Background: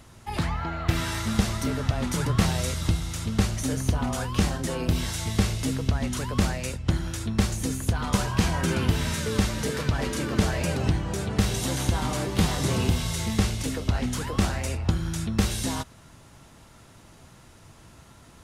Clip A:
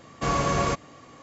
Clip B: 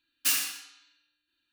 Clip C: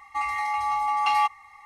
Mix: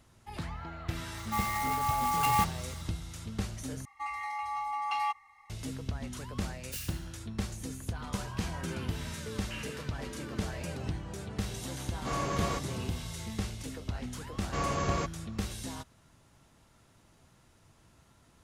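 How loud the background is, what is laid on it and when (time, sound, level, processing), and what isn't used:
background −11.5 dB
0:01.17: mix in C −5 dB + converter with an unsteady clock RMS 0.041 ms
0:03.85: overwrite with C −9.5 dB
0:06.47: mix in B −15 dB + high-pass filter 1,500 Hz
0:09.25: mix in B −10 dB + linear-phase brick-wall low-pass 3,300 Hz
0:11.84: mix in A −9 dB
0:14.31: mix in A −7.5 dB

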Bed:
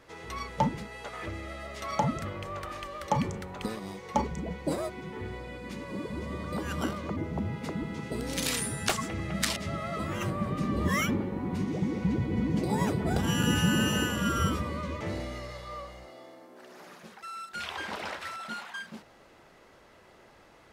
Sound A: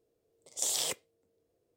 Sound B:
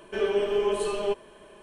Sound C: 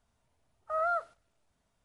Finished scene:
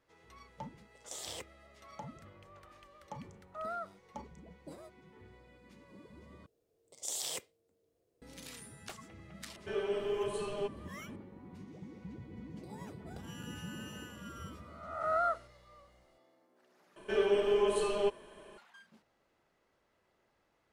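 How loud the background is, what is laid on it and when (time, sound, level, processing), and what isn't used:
bed −19 dB
0:00.49: mix in A −6.5 dB + high-shelf EQ 4,600 Hz −10.5 dB
0:02.85: mix in C −10 dB
0:06.46: overwrite with A −1.5 dB + downward compressor 2 to 1, threshold −36 dBFS
0:09.54: mix in B −9.5 dB
0:14.34: mix in C −2 dB + peak hold with a rise ahead of every peak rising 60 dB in 0.85 s
0:16.96: overwrite with B −3.5 dB

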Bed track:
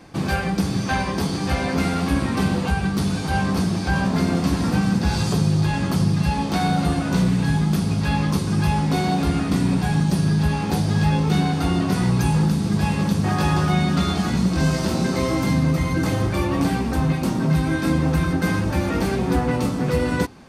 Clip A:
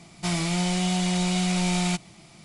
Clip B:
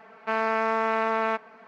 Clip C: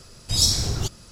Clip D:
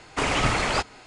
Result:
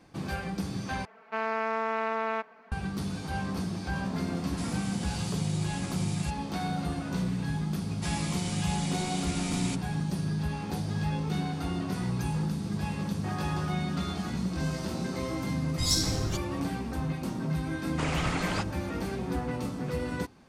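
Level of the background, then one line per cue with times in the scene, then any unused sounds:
bed track −11.5 dB
0:01.05: overwrite with B −5 dB
0:04.34: mix in A −17 dB + high-shelf EQ 6,400 Hz +11.5 dB
0:07.79: mix in A −10.5 dB + high-shelf EQ 5,700 Hz +7 dB
0:15.49: mix in C −7 dB + one-sided soft clipper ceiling −5.5 dBFS
0:17.81: mix in D −9 dB

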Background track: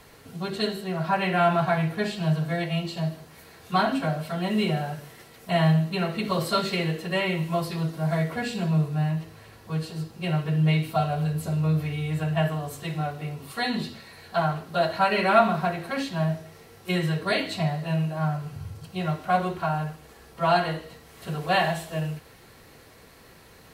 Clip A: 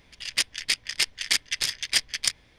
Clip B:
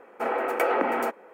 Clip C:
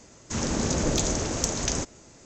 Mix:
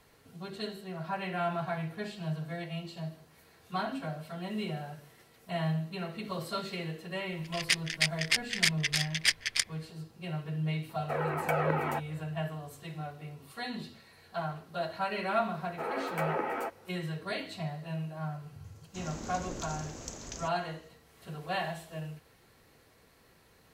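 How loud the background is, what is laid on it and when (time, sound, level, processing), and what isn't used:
background track −11 dB
0:07.32: mix in A −5.5 dB + parametric band 1,900 Hz +6.5 dB 1.1 octaves
0:10.89: mix in B −1.5 dB + flanger whose copies keep moving one way falling 2 Hz
0:15.58: mix in B −5 dB + string-ensemble chorus
0:18.64: mix in C −15.5 dB

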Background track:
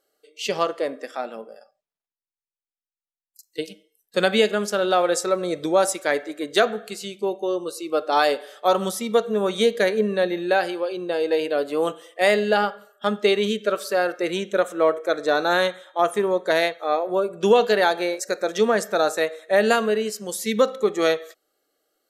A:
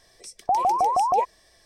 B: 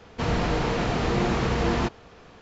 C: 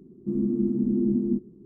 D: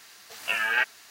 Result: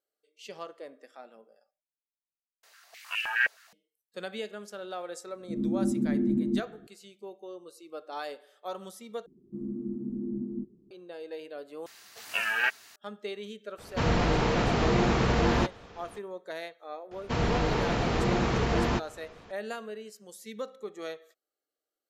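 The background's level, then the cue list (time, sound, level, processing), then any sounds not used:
background track −18.5 dB
0:02.63: overwrite with D −10 dB + high-pass on a step sequencer 9.6 Hz 540–2,800 Hz
0:05.22: mix in C −3 dB + fade in at the beginning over 0.50 s
0:09.26: overwrite with C −10.5 dB
0:11.86: overwrite with D −2.5 dB
0:13.78: mix in B −0.5 dB
0:17.11: mix in B −2.5 dB
not used: A

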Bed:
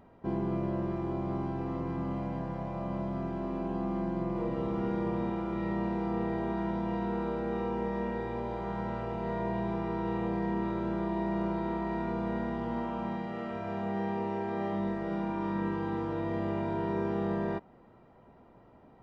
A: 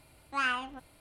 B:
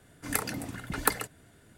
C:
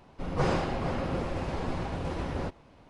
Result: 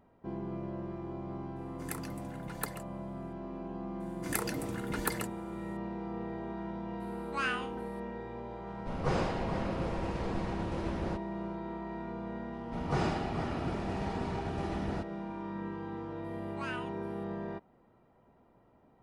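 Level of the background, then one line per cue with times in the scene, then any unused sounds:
bed −7 dB
0:01.56: mix in B −12 dB
0:04.00: mix in B −2.5 dB + brickwall limiter −11 dBFS
0:07.00: mix in A −4.5 dB + peak hold with a decay on every bin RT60 0.31 s
0:08.67: mix in C −4 dB
0:12.53: mix in C −2.5 dB + notch comb filter 530 Hz
0:16.24: mix in A −11 dB

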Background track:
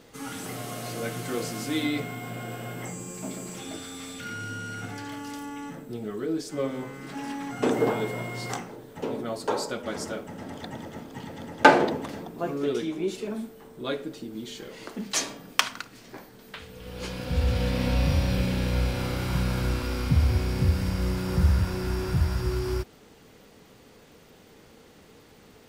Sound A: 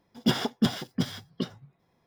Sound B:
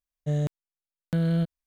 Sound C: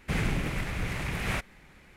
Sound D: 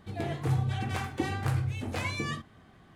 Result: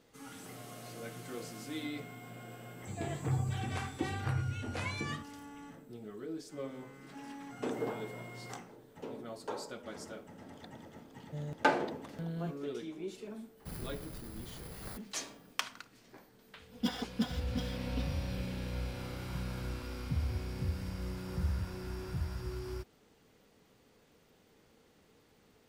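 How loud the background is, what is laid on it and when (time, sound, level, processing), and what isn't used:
background track −12.5 dB
0:02.81: mix in D −5 dB + gate on every frequency bin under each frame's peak −40 dB strong
0:11.06: mix in B −15 dB
0:13.57: mix in C −15 dB + samples in bit-reversed order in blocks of 16 samples
0:16.57: mix in A −13.5 dB + comb filter 4 ms, depth 99%

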